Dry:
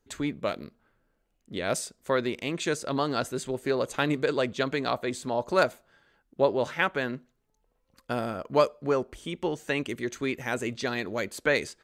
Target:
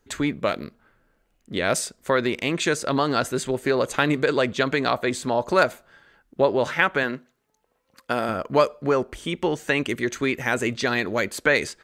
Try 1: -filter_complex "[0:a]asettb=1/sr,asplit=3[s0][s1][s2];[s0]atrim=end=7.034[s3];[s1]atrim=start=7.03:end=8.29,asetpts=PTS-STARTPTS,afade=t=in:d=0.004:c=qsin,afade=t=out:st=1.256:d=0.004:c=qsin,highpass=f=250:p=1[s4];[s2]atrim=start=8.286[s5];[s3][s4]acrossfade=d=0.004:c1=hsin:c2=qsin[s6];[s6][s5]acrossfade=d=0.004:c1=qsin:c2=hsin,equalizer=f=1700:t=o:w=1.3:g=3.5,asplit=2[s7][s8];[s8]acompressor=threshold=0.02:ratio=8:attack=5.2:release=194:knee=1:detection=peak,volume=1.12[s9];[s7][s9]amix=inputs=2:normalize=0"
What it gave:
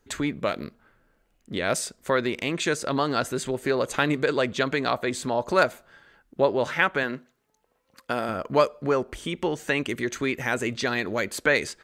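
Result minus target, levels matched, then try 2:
compression: peak gain reduction +8.5 dB
-filter_complex "[0:a]asettb=1/sr,asplit=3[s0][s1][s2];[s0]atrim=end=7.034[s3];[s1]atrim=start=7.03:end=8.29,asetpts=PTS-STARTPTS,afade=t=in:d=0.004:c=qsin,afade=t=out:st=1.256:d=0.004:c=qsin,highpass=f=250:p=1[s4];[s2]atrim=start=8.286[s5];[s3][s4]acrossfade=d=0.004:c1=hsin:c2=qsin[s6];[s6][s5]acrossfade=d=0.004:c1=qsin:c2=hsin,equalizer=f=1700:t=o:w=1.3:g=3.5,asplit=2[s7][s8];[s8]acompressor=threshold=0.0596:ratio=8:attack=5.2:release=194:knee=1:detection=peak,volume=1.12[s9];[s7][s9]amix=inputs=2:normalize=0"

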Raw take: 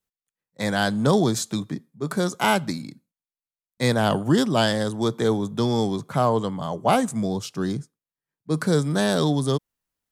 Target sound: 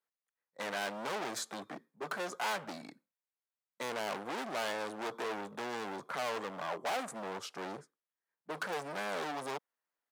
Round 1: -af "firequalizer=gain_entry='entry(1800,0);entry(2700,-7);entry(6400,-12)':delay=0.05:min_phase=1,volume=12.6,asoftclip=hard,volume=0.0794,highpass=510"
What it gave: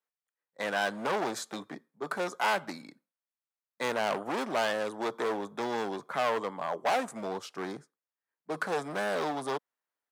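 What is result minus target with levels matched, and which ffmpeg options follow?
overload inside the chain: distortion -4 dB
-af "firequalizer=gain_entry='entry(1800,0);entry(2700,-7);entry(6400,-12)':delay=0.05:min_phase=1,volume=35.5,asoftclip=hard,volume=0.0282,highpass=510"

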